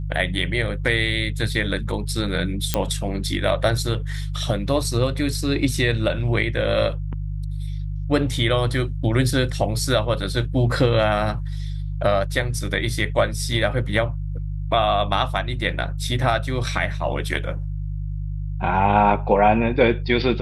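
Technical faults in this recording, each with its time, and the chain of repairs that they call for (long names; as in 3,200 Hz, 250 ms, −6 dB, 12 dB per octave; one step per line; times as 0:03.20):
mains hum 50 Hz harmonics 3 −27 dBFS
0:02.74: click −3 dBFS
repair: click removal
hum removal 50 Hz, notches 3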